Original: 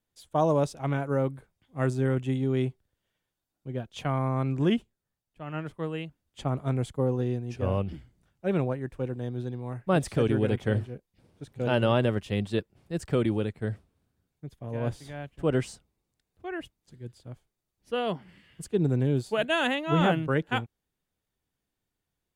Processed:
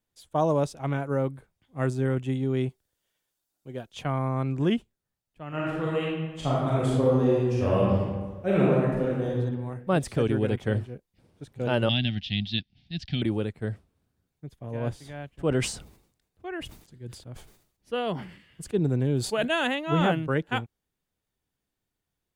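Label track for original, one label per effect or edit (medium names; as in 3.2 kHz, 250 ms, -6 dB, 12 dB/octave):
2.690000	3.920000	tone controls bass -7 dB, treble +8 dB
5.480000	9.340000	reverb throw, RT60 1.4 s, DRR -6 dB
11.890000	13.220000	FFT filter 250 Hz 0 dB, 480 Hz -29 dB, 740 Hz -7 dB, 1.1 kHz -26 dB, 1.7 kHz -4 dB, 2.5 kHz +5 dB, 3.6 kHz +14 dB, 5.5 kHz +3 dB, 7.9 kHz -21 dB, 12 kHz -30 dB
15.380000	19.510000	decay stretcher at most 94 dB/s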